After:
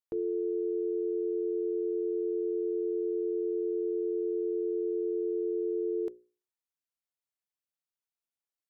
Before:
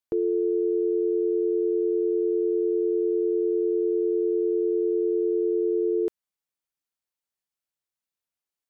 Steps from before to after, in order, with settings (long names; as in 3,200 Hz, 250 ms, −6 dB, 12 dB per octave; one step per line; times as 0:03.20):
mains-hum notches 60/120/180/240/300/360/420/480/540 Hz
level −7 dB